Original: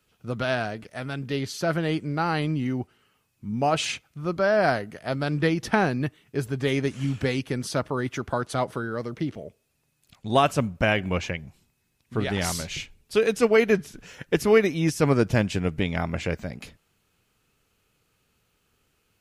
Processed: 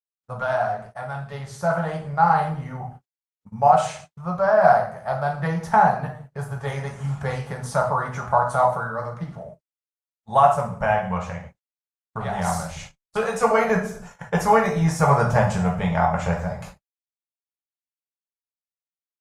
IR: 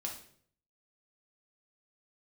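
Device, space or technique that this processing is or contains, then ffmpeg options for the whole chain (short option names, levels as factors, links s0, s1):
speakerphone in a meeting room: -filter_complex "[0:a]agate=range=0.0251:threshold=0.00224:ratio=16:detection=peak,firequalizer=gain_entry='entry(190,0);entry(290,-25);entry(450,-3);entry(800,11);entry(2600,-10);entry(4800,-7);entry(7000,1);entry(13000,-7)':delay=0.05:min_phase=1[s0];[1:a]atrim=start_sample=2205[s1];[s0][s1]afir=irnorm=-1:irlink=0,dynaudnorm=f=510:g=7:m=2,agate=range=0.00178:threshold=0.0126:ratio=16:detection=peak,volume=0.891" -ar 48000 -c:a libopus -b:a 32k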